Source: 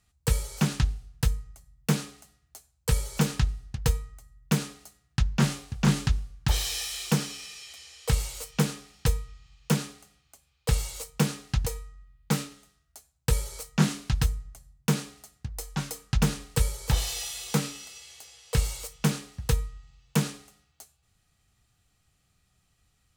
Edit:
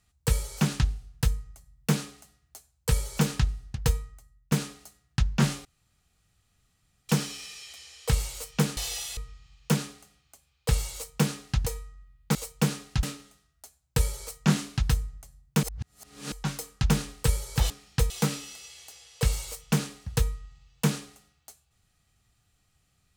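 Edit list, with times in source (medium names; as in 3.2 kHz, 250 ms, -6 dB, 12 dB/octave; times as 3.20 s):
4.00–4.52 s: fade out, to -12.5 dB
5.65–7.09 s: room tone
8.77–9.17 s: swap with 17.02–17.42 s
10.93–11.61 s: copy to 12.35 s
14.95–15.64 s: reverse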